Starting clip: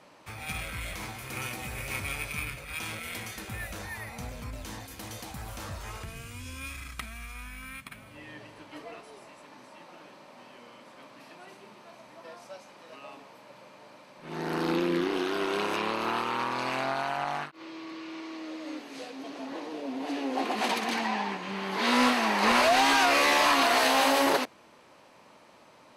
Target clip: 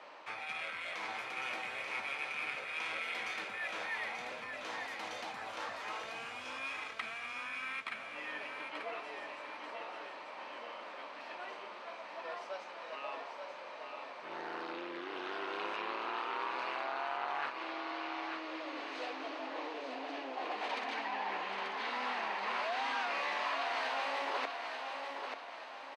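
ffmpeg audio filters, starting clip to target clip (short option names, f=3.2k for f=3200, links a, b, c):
-af "areverse,acompressor=threshold=-39dB:ratio=8,areverse,highpass=560,lowpass=3.4k,aecho=1:1:886|1772|2658|3544|4430:0.531|0.218|0.0892|0.0366|0.015,volume=5dB"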